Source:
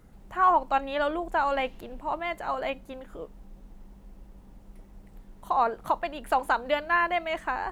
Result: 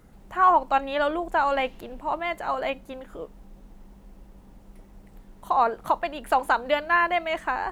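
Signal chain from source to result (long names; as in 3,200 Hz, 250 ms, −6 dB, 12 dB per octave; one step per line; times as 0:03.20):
low-shelf EQ 140 Hz −3.5 dB
level +3 dB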